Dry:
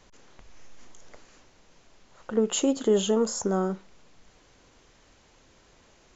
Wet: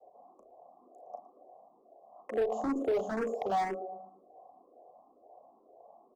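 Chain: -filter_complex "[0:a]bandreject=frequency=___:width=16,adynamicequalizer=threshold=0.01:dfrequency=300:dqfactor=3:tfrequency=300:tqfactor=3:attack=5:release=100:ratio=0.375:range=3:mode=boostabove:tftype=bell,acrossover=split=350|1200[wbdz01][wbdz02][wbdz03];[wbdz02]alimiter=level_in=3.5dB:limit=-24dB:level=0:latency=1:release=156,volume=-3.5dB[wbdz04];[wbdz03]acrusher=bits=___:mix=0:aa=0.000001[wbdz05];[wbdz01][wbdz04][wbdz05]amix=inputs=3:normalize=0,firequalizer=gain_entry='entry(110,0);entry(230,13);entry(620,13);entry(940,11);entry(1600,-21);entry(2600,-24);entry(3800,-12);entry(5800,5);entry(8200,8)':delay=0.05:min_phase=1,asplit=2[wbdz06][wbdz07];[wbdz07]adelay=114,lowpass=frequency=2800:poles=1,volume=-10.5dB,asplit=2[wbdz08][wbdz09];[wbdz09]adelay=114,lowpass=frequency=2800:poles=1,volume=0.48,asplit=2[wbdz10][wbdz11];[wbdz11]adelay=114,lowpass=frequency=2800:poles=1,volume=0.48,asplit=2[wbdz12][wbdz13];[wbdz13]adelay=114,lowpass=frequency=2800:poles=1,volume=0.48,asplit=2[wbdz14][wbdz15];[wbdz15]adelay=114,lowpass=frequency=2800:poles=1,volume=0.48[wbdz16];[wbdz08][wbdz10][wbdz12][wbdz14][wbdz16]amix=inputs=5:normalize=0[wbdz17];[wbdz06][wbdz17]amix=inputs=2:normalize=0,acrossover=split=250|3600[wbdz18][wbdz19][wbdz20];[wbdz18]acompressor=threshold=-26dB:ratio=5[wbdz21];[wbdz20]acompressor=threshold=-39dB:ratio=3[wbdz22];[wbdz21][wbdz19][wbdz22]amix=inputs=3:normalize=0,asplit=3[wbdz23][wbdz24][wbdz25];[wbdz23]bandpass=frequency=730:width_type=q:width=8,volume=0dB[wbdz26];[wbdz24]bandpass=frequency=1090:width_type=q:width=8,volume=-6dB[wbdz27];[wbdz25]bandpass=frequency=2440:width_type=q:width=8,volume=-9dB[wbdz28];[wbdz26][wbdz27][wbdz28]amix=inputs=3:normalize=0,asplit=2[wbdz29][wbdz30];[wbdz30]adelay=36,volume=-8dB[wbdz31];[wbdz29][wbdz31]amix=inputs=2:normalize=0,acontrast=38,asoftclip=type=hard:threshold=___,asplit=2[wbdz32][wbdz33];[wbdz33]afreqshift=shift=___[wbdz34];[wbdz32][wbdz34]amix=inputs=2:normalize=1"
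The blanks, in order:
1500, 6, -24.5dB, 2.1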